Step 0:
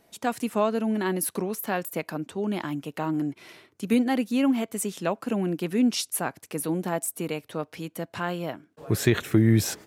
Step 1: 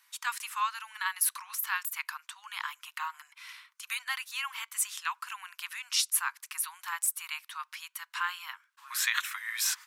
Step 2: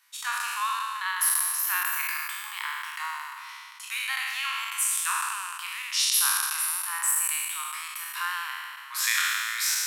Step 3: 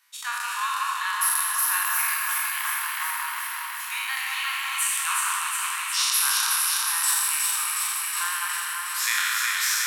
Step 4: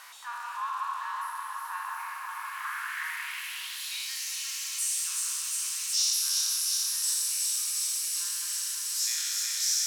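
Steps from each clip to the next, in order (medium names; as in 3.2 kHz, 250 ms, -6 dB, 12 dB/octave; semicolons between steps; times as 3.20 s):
steep high-pass 980 Hz 72 dB/octave; trim +2 dB
spectral sustain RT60 2.21 s; trim -1 dB
echo whose repeats swap between lows and highs 182 ms, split 1.7 kHz, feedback 87%, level -2 dB
zero-crossing glitches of -15 dBFS; band-pass sweep 890 Hz -> 5.7 kHz, 2.31–4.27 s; trim -2.5 dB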